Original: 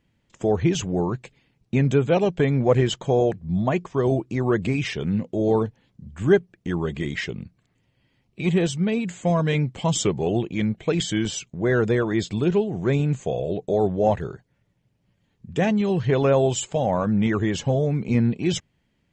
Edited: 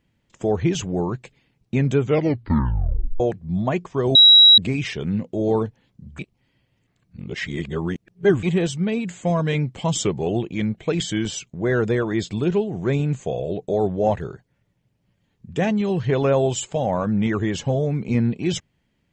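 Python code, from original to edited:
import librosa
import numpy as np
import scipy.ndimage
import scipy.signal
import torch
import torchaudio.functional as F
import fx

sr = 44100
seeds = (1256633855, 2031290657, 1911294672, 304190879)

y = fx.edit(x, sr, fx.tape_stop(start_s=2.0, length_s=1.2),
    fx.bleep(start_s=4.15, length_s=0.43, hz=3870.0, db=-6.5),
    fx.reverse_span(start_s=6.19, length_s=2.24), tone=tone)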